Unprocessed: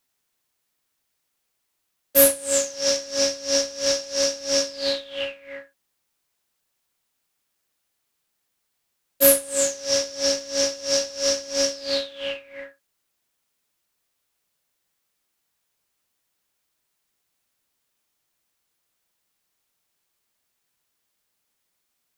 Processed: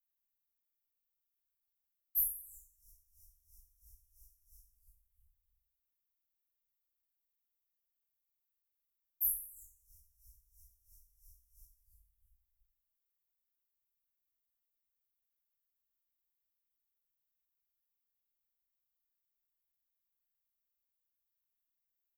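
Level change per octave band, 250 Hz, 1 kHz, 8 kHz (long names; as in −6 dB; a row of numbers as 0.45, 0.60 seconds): below −40 dB, below −40 dB, −24.5 dB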